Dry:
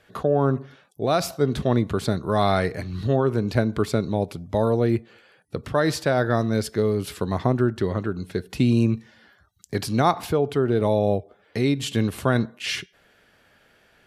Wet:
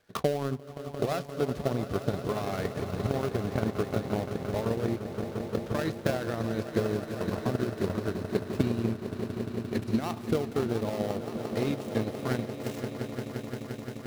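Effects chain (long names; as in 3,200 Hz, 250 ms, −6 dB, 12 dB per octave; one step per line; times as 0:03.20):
gap after every zero crossing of 0.17 ms
brickwall limiter −14 dBFS, peak gain reduction 8 dB
echo that builds up and dies away 174 ms, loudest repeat 5, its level −10 dB
transient designer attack +11 dB, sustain −7 dB
level −9 dB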